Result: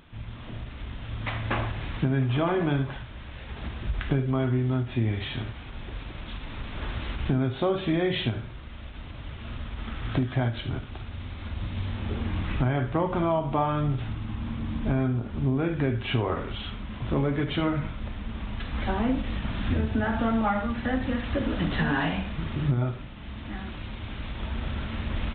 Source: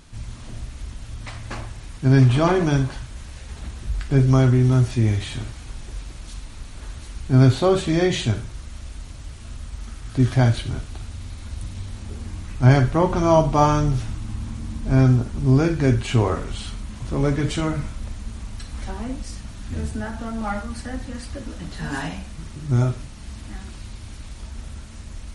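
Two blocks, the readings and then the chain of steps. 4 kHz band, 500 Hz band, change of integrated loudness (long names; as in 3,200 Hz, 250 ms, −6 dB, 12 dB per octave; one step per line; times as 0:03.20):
−2.5 dB, −6.0 dB, −8.5 dB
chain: camcorder AGC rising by 5.4 dB per second
low-shelf EQ 79 Hz −9.5 dB
downward compressor 5 to 1, threshold −20 dBFS, peak gain reduction 9.5 dB
ambience of single reflections 35 ms −15 dB, 73 ms −14.5 dB
downsampling to 8,000 Hz
every ending faded ahead of time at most 190 dB per second
level −1.5 dB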